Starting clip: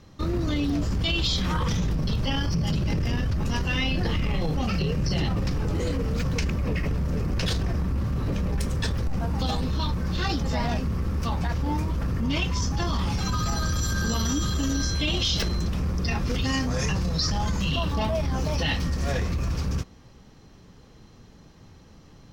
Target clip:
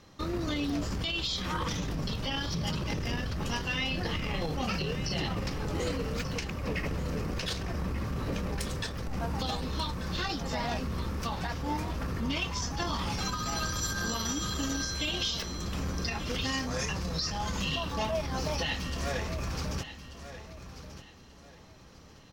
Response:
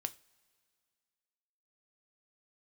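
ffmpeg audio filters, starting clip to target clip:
-filter_complex "[0:a]lowshelf=f=270:g=-9.5,alimiter=limit=0.0794:level=0:latency=1:release=357,asplit=2[s0][s1];[s1]aecho=0:1:1187|2374|3561:0.237|0.0688|0.0199[s2];[s0][s2]amix=inputs=2:normalize=0"

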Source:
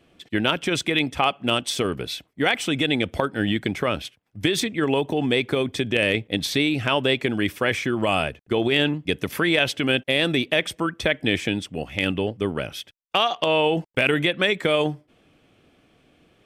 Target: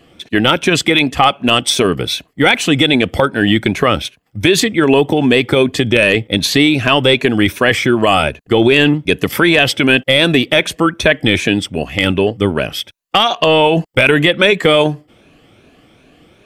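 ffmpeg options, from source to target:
-af "afftfilt=real='re*pow(10,7/40*sin(2*PI*(1.5*log(max(b,1)*sr/1024/100)/log(2)-(2.6)*(pts-256)/sr)))':imag='im*pow(10,7/40*sin(2*PI*(1.5*log(max(b,1)*sr/1024/100)/log(2)-(2.6)*(pts-256)/sr)))':win_size=1024:overlap=0.75,apsyclip=4.22,volume=0.794"

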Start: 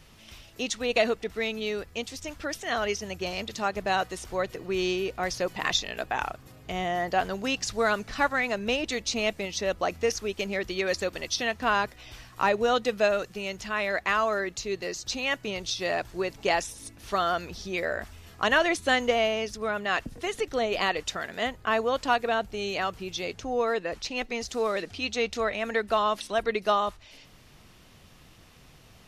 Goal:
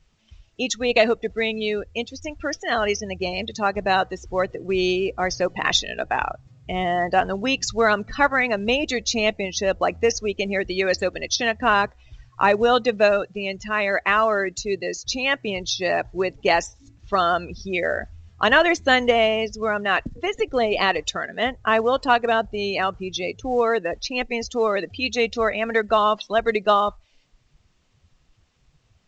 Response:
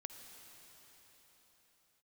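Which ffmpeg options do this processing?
-af "afftdn=nr=21:nf=-37,volume=2.11" -ar 16000 -c:a pcm_alaw

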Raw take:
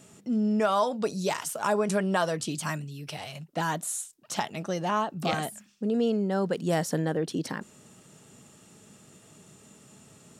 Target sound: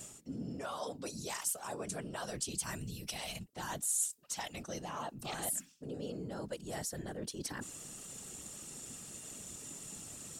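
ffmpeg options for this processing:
-af "equalizer=f=7900:w=1.5:g=2,areverse,acompressor=threshold=0.00891:ratio=5,areverse,afftfilt=real='hypot(re,im)*cos(2*PI*random(0))':imag='hypot(re,im)*sin(2*PI*random(1))':win_size=512:overlap=0.75,highshelf=f=3800:g=11.5,volume=1.88"

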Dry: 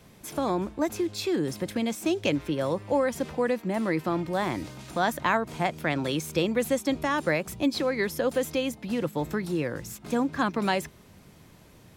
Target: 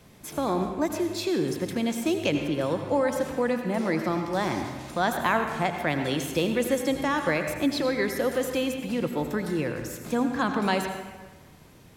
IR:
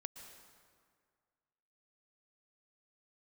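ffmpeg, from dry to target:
-filter_complex "[0:a]asettb=1/sr,asplit=3[s0][s1][s2];[s0]atrim=end=3.784[s3];[s1]atrim=start=3.78:end=4.61,asetpts=PTS-STARTPTS,afade=t=in:d=0.004:c=qsin,afade=t=out:st=0.826:d=0.004:c=qsin,equalizer=f=5600:t=o:w=0.49:g=8[s4];[s2]atrim=start=4.606[s5];[s3][s4]acrossfade=d=0.004:c1=hsin:c2=qsin[s6];[s6][s5]acrossfade=d=0.004:c1=qsin:c2=hsin[s7];[1:a]atrim=start_sample=2205,asetrate=66150,aresample=44100[s8];[s7][s8]afir=irnorm=-1:irlink=0,volume=2.66"

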